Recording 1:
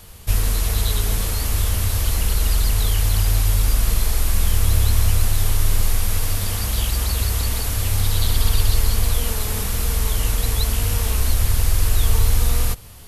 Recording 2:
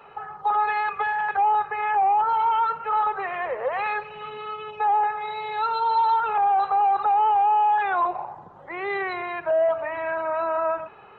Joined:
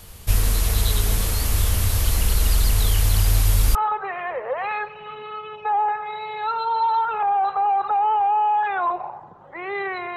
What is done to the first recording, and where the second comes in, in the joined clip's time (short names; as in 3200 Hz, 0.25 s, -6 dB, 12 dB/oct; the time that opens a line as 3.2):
recording 1
3.75 switch to recording 2 from 2.9 s